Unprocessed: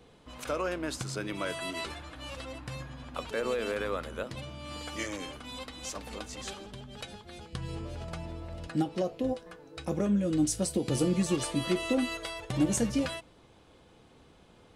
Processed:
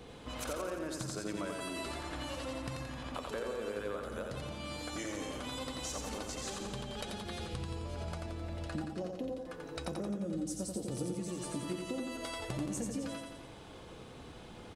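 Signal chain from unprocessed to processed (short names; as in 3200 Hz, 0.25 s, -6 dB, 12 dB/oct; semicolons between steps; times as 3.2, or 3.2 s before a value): dynamic EQ 2600 Hz, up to -6 dB, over -50 dBFS, Q 0.85; compressor 6:1, threshold -44 dBFS, peak gain reduction 20.5 dB; feedback echo 87 ms, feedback 59%, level -4 dB; gain +6 dB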